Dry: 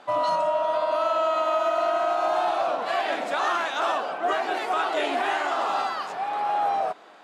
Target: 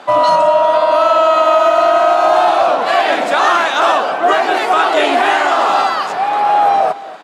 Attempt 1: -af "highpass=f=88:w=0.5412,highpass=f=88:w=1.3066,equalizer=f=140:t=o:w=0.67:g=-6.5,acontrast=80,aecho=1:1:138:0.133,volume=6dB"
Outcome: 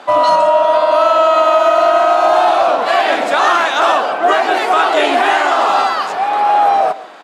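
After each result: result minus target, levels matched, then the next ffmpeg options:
echo 0.104 s early; 125 Hz band -4.0 dB
-af "highpass=f=88:w=0.5412,highpass=f=88:w=1.3066,equalizer=f=140:t=o:w=0.67:g=-6.5,acontrast=80,aecho=1:1:242:0.133,volume=6dB"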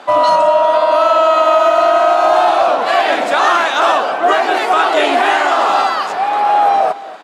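125 Hz band -4.0 dB
-af "highpass=f=88:w=0.5412,highpass=f=88:w=1.3066,acontrast=80,aecho=1:1:242:0.133,volume=6dB"

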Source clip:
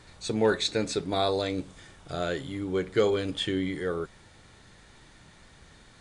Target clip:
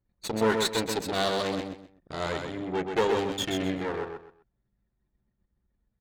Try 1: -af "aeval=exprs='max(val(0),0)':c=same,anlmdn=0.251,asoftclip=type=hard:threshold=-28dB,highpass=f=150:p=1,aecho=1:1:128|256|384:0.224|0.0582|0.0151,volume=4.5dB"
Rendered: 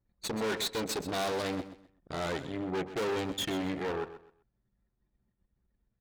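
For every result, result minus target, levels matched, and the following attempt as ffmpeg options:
hard clip: distortion +22 dB; echo-to-direct -8 dB
-af "aeval=exprs='max(val(0),0)':c=same,anlmdn=0.251,asoftclip=type=hard:threshold=-16dB,highpass=f=150:p=1,aecho=1:1:128|256|384:0.224|0.0582|0.0151,volume=4.5dB"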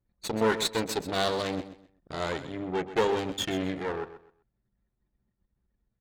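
echo-to-direct -8 dB
-af "aeval=exprs='max(val(0),0)':c=same,anlmdn=0.251,asoftclip=type=hard:threshold=-16dB,highpass=f=150:p=1,aecho=1:1:128|256|384:0.562|0.146|0.038,volume=4.5dB"

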